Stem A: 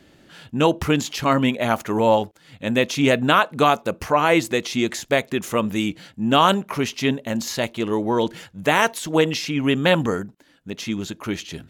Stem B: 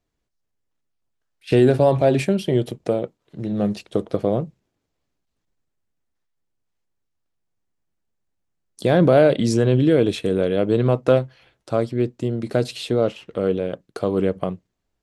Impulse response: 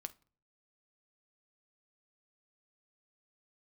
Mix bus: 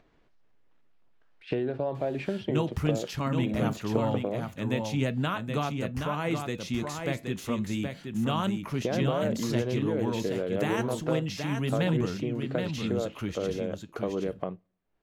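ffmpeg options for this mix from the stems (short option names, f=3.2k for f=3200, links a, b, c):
-filter_complex "[0:a]acrossover=split=190[a][b];[b]acompressor=threshold=-53dB:ratio=1.5[c];[a][c]amix=inputs=2:normalize=0,flanger=delay=5:depth=4.9:regen=-81:speed=0.3:shape=sinusoidal,adelay=1950,volume=3dB,asplit=2[d][e];[e]volume=-5.5dB[f];[1:a]lowpass=2.7k,equalizer=f=61:t=o:w=2.5:g=-8.5,acompressor=threshold=-21dB:ratio=10,volume=-6.5dB,asplit=2[g][h];[h]volume=-9.5dB[i];[2:a]atrim=start_sample=2205[j];[i][j]afir=irnorm=-1:irlink=0[k];[f]aecho=0:1:773:1[l];[d][g][k][l]amix=inputs=4:normalize=0,acompressor=mode=upward:threshold=-47dB:ratio=2.5"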